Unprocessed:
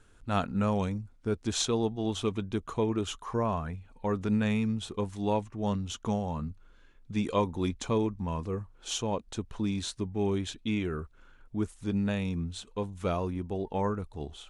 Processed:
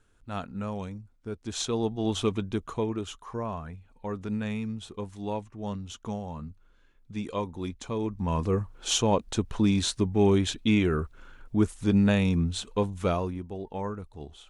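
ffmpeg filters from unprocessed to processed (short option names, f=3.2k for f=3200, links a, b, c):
-af "volume=15.5dB,afade=t=in:st=1.42:d=0.76:silence=0.316228,afade=t=out:st=2.18:d=0.94:silence=0.398107,afade=t=in:st=7.97:d=0.5:silence=0.266073,afade=t=out:st=12.74:d=0.72:silence=0.281838"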